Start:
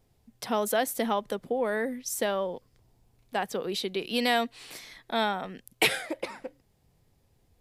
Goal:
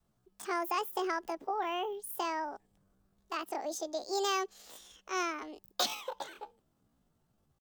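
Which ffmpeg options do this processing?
-af "adynamicequalizer=threshold=0.00794:dfrequency=250:dqfactor=0.76:tfrequency=250:tqfactor=0.76:attack=5:release=100:ratio=0.375:range=2.5:mode=boostabove:tftype=bell,asetrate=72056,aresample=44100,atempo=0.612027,volume=0.398"

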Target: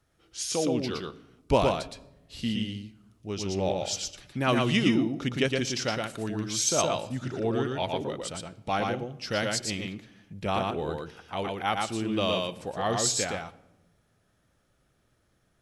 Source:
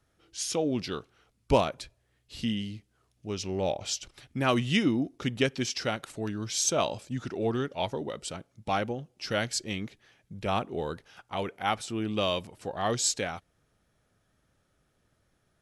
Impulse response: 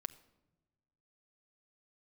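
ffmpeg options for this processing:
-filter_complex "[0:a]asplit=2[s0][s1];[1:a]atrim=start_sample=2205,adelay=116[s2];[s1][s2]afir=irnorm=-1:irlink=0,volume=1[s3];[s0][s3]amix=inputs=2:normalize=0"

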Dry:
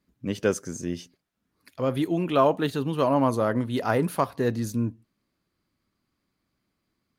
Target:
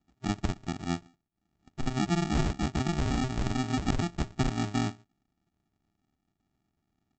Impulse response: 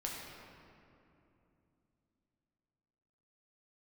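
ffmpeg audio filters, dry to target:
-af "lowpass=1200,acompressor=threshold=0.0631:ratio=10,aresample=16000,acrusher=samples=31:mix=1:aa=0.000001,aresample=44100"

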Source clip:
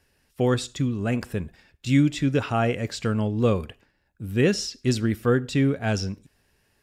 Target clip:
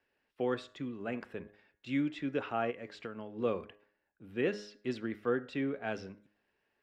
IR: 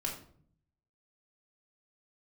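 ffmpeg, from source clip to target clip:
-filter_complex "[0:a]acrossover=split=240 3500:gain=0.141 1 0.0794[s0][s1][s2];[s0][s1][s2]amix=inputs=3:normalize=0,bandreject=f=103.8:t=h:w=4,bandreject=f=207.6:t=h:w=4,bandreject=f=311.4:t=h:w=4,bandreject=f=415.2:t=h:w=4,bandreject=f=519:t=h:w=4,bandreject=f=622.8:t=h:w=4,bandreject=f=726.6:t=h:w=4,bandreject=f=830.4:t=h:w=4,bandreject=f=934.2:t=h:w=4,bandreject=f=1038:t=h:w=4,bandreject=f=1141.8:t=h:w=4,bandreject=f=1245.6:t=h:w=4,bandreject=f=1349.4:t=h:w=4,bandreject=f=1453.2:t=h:w=4,bandreject=f=1557:t=h:w=4,bandreject=f=1660.8:t=h:w=4,bandreject=f=1764.6:t=h:w=4,bandreject=f=1868.4:t=h:w=4,bandreject=f=1972.2:t=h:w=4,bandreject=f=2076:t=h:w=4,bandreject=f=2179.8:t=h:w=4,asplit=3[s3][s4][s5];[s3]afade=t=out:st=2.7:d=0.02[s6];[s4]acompressor=threshold=0.0316:ratio=6,afade=t=in:st=2.7:d=0.02,afade=t=out:st=3.38:d=0.02[s7];[s5]afade=t=in:st=3.38:d=0.02[s8];[s6][s7][s8]amix=inputs=3:normalize=0,volume=0.376"

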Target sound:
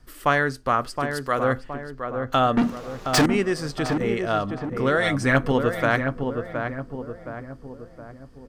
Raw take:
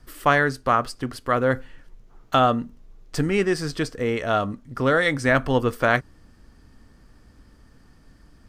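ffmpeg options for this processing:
-filter_complex "[0:a]asettb=1/sr,asplit=3[s0][s1][s2];[s0]atrim=end=0.964[s3];[s1]atrim=start=0.96:end=1.44,asetpts=PTS-STARTPTS,afade=t=in:d=0.004:c=qsin,afade=t=out:st=0.476:d=0.004:c=qsin,bass=f=250:g=-6,treble=f=4000:g=6[s4];[s2]atrim=start=1.436[s5];[s3][s4]acrossfade=d=0.004:c1=hsin:c2=qsin[s6];[s6][s5]acrossfade=d=0.004:c1=qsin:c2=hsin,asettb=1/sr,asplit=3[s7][s8][s9];[s7]atrim=end=2.574[s10];[s8]atrim=start=2.57:end=3.26,asetpts=PTS-STARTPTS,afade=t=in:d=0.004:c=qsin,afade=t=out:st=0.686:d=0.004:c=qsin,asplit=2[s11][s12];[s12]highpass=f=720:p=1,volume=63.1,asoftclip=type=tanh:threshold=0.398[s13];[s11][s13]amix=inputs=2:normalize=0,lowpass=f=5100:p=1,volume=0.501[s14];[s9]atrim=start=3.256[s15];[s10][s14]acrossfade=d=0.004:c1=hsin:c2=qsin[s16];[s16][s15]acrossfade=d=0.004:c1=qsin:c2=hsin,asettb=1/sr,asplit=3[s17][s18][s19];[s17]atrim=end=5.034[s20];[s18]atrim=start=5.03:end=5.52,asetpts=PTS-STARTPTS,afade=t=in:d=0.004:c=qsin,afade=t=out:st=0.486:d=0.004:c=qsin,aecho=1:1:7.1:0.74,atrim=end_sample=21609[s21];[s19]atrim=start=5.516[s22];[s20][s21]acrossfade=d=0.004:c1=hsin:c2=qsin[s23];[s23][s22]acrossfade=d=0.004:c1=qsin:c2=hsin,asplit=2[s24][s25];[s25]adelay=718,lowpass=f=1300:p=1,volume=0.562,asplit=2[s26][s27];[s27]adelay=718,lowpass=f=1300:p=1,volume=0.51,asplit=2[s28][s29];[s29]adelay=718,lowpass=f=1300:p=1,volume=0.51,asplit=2[s30][s31];[s31]adelay=718,lowpass=f=1300:p=1,volume=0.51,asplit=2[s32][s33];[s33]adelay=718,lowpass=f=1300:p=1,volume=0.51,asplit=2[s34][s35];[s35]adelay=718,lowpass=f=1300:p=1,volume=0.51[s36];[s24][s26][s28][s30][s32][s34][s36]amix=inputs=7:normalize=0,volume=0.794"

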